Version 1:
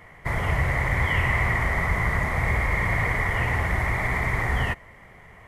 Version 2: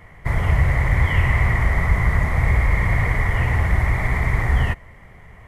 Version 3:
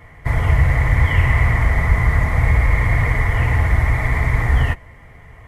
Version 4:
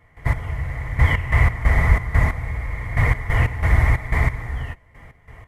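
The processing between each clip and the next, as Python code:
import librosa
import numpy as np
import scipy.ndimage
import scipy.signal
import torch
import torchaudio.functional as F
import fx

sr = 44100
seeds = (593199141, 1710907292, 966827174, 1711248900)

y1 = fx.low_shelf(x, sr, hz=150.0, db=10.0)
y2 = fx.notch_comb(y1, sr, f0_hz=190.0)
y2 = y2 * librosa.db_to_amplitude(3.0)
y3 = fx.step_gate(y2, sr, bpm=91, pattern='.x....x.x.xx', floor_db=-12.0, edge_ms=4.5)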